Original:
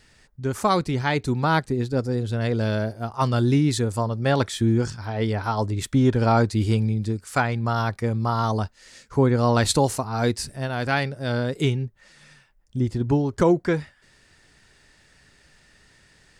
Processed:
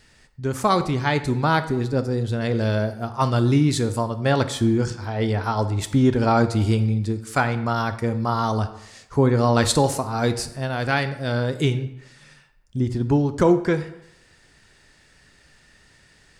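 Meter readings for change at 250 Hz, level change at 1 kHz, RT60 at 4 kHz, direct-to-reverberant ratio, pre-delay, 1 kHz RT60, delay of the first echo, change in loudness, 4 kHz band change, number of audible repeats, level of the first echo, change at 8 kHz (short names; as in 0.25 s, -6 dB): +1.5 dB, +1.5 dB, 0.60 s, 10.0 dB, 14 ms, 0.90 s, none, +1.5 dB, +1.5 dB, none, none, +1.0 dB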